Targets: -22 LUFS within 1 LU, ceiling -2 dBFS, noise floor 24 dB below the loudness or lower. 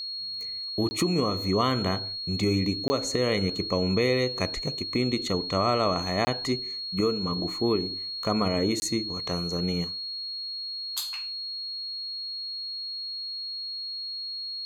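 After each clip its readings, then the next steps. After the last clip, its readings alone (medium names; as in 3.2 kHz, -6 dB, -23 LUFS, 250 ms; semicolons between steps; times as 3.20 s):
dropouts 4; longest dropout 20 ms; steady tone 4.3 kHz; tone level -32 dBFS; loudness -28.0 LUFS; peak level -10.5 dBFS; loudness target -22.0 LUFS
-> interpolate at 0.89/2.88/6.25/8.80 s, 20 ms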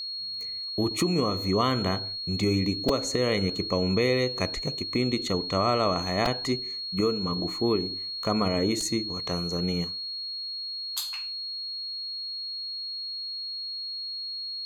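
dropouts 0; steady tone 4.3 kHz; tone level -32 dBFS
-> band-stop 4.3 kHz, Q 30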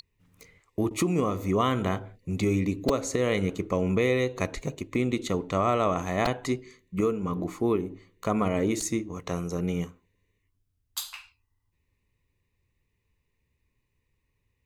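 steady tone not found; loudness -28.0 LUFS; peak level -11.0 dBFS; loudness target -22.0 LUFS
-> trim +6 dB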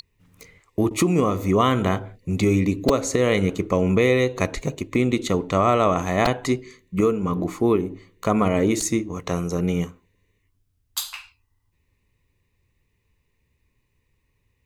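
loudness -22.0 LUFS; peak level -5.0 dBFS; noise floor -70 dBFS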